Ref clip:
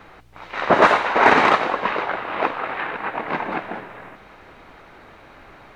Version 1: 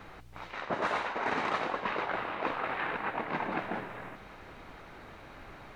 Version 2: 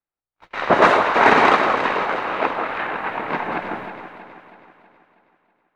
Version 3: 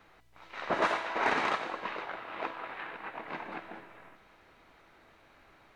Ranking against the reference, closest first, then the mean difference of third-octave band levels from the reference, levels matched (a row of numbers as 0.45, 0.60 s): 3, 2, 1; 2.0, 4.5, 7.0 dB